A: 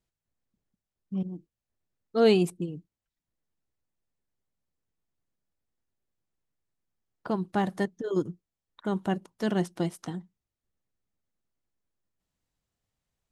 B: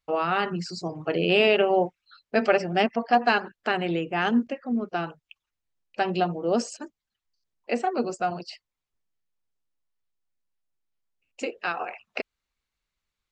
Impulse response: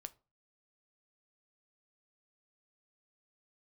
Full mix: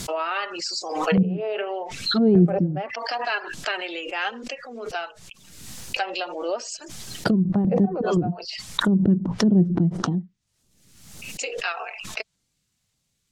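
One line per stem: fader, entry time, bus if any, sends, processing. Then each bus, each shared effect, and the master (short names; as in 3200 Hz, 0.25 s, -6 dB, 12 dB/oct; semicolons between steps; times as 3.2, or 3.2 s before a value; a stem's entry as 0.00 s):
+1.0 dB, 0.00 s, no send, bell 170 Hz +11 dB 2.2 oct; LFO notch saw down 1.7 Hz 220–2600 Hz
-0.5 dB, 0.00 s, no send, HPF 410 Hz 24 dB/oct; limiter -15 dBFS, peak gain reduction 6 dB; flange 0.29 Hz, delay 2.9 ms, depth 1.8 ms, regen +32%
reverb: off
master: treble ducked by the level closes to 380 Hz, closed at -19 dBFS; bell 7000 Hz +14.5 dB 2.9 oct; backwards sustainer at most 49 dB/s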